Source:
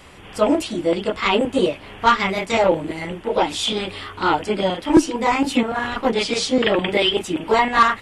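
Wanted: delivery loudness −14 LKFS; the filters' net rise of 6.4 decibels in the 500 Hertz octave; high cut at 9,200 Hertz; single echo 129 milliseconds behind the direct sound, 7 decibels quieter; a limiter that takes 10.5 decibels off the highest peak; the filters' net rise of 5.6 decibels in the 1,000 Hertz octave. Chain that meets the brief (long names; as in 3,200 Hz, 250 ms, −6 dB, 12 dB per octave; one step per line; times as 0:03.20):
low-pass filter 9,200 Hz
parametric band 500 Hz +6.5 dB
parametric band 1,000 Hz +5 dB
brickwall limiter −8.5 dBFS
single-tap delay 129 ms −7 dB
level +4.5 dB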